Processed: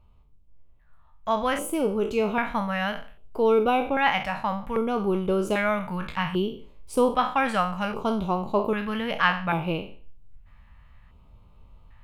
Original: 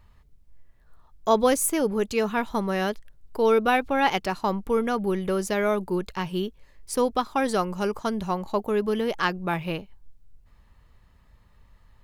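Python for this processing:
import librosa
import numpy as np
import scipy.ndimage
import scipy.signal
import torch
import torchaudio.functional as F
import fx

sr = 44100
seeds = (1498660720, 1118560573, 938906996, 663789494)

y = fx.spec_trails(x, sr, decay_s=0.43)
y = fx.filter_lfo_notch(y, sr, shape='square', hz=0.63, low_hz=380.0, high_hz=1800.0, q=0.86)
y = fx.high_shelf_res(y, sr, hz=3700.0, db=-10.5, q=1.5)
y = fx.rider(y, sr, range_db=10, speed_s=2.0)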